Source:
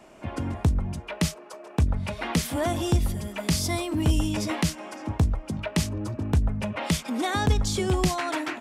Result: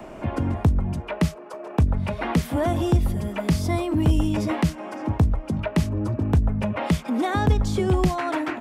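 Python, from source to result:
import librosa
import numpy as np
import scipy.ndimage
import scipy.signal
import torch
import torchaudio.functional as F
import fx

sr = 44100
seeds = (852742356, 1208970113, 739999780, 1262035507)

y = fx.peak_eq(x, sr, hz=7400.0, db=-11.5, octaves=3.0)
y = fx.band_squash(y, sr, depth_pct=40)
y = F.gain(torch.from_numpy(y), 4.0).numpy()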